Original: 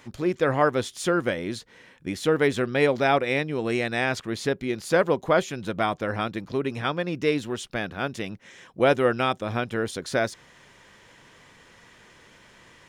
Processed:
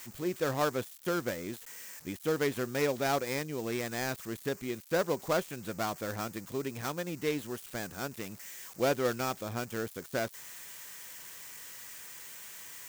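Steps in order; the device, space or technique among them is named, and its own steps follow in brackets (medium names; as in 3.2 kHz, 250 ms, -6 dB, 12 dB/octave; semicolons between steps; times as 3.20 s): budget class-D amplifier (dead-time distortion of 0.13 ms; zero-crossing glitches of -23.5 dBFS); trim -8.5 dB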